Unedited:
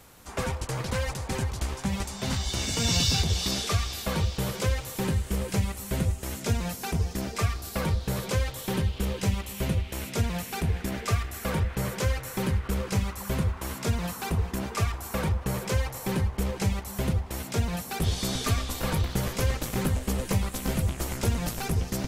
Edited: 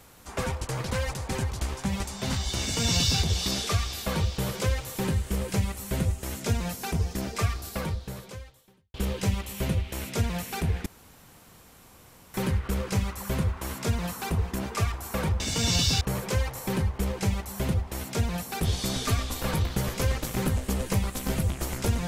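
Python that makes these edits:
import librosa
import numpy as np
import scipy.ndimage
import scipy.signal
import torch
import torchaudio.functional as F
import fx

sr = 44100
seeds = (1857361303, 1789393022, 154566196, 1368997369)

y = fx.edit(x, sr, fx.duplicate(start_s=2.61, length_s=0.61, to_s=15.4),
    fx.fade_out_span(start_s=7.62, length_s=1.32, curve='qua'),
    fx.room_tone_fill(start_s=10.86, length_s=1.48), tone=tone)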